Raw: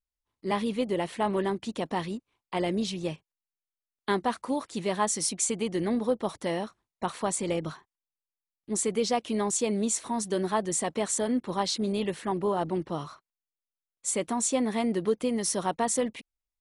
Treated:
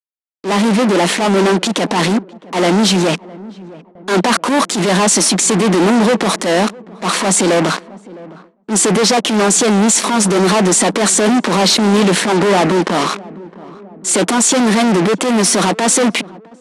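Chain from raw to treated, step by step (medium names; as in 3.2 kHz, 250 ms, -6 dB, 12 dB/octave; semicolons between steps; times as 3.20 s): hum 50 Hz, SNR 25 dB; fuzz box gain 42 dB, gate -46 dBFS; elliptic high-pass 180 Hz; wow and flutter 22 cents; low-pass 10 kHz 24 dB/octave; transient shaper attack -8 dB, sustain +5 dB; filtered feedback delay 660 ms, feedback 55%, low-pass 910 Hz, level -20 dB; level rider gain up to 7.5 dB; gate with hold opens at -29 dBFS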